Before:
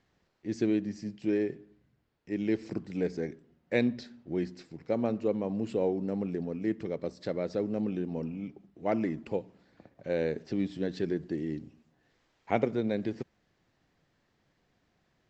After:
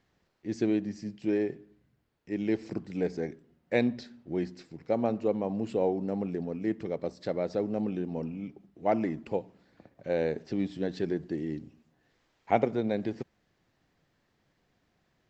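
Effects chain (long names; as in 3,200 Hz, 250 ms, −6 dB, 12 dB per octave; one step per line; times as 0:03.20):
dynamic equaliser 770 Hz, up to +6 dB, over −46 dBFS, Q 2.1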